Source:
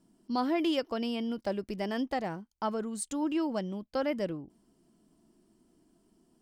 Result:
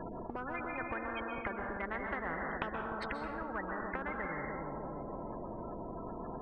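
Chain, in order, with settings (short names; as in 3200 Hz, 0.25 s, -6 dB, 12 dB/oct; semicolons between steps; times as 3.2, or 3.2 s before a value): LPF 2000 Hz 24 dB/oct; spectral gate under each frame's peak -25 dB strong; compressor 4:1, threshold -46 dBFS, peak gain reduction 17.5 dB; dark delay 0.3 s, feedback 41%, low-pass 470 Hz, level -5.5 dB; plate-style reverb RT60 0.94 s, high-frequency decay 0.75×, pre-delay 0.115 s, DRR 7 dB; spectral compressor 10:1; gain +12 dB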